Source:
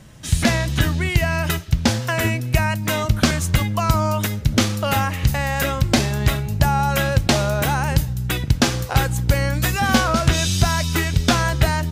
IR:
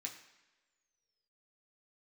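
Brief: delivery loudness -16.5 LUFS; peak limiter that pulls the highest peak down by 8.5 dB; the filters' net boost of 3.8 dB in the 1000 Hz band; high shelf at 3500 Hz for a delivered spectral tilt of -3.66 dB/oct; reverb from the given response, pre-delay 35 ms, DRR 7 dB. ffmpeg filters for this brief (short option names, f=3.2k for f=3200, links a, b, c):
-filter_complex "[0:a]equalizer=f=1k:t=o:g=4,highshelf=f=3.5k:g=9,alimiter=limit=-7.5dB:level=0:latency=1,asplit=2[a][b];[1:a]atrim=start_sample=2205,adelay=35[c];[b][c]afir=irnorm=-1:irlink=0,volume=-4.5dB[d];[a][d]amix=inputs=2:normalize=0,volume=2dB"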